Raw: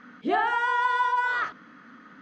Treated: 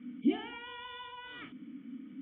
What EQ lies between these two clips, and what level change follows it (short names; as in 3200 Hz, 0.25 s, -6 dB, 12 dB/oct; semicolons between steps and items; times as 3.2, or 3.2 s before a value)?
HPF 54 Hz; dynamic EQ 460 Hz, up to -5 dB, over -40 dBFS, Q 0.74; vocal tract filter i; +9.5 dB